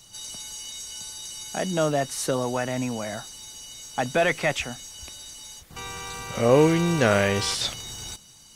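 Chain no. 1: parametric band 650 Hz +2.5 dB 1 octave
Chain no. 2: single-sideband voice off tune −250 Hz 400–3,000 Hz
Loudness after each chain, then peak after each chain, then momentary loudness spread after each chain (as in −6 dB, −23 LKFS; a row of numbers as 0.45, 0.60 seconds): −24.0, −27.0 LKFS; −4.5, −8.5 dBFS; 19, 24 LU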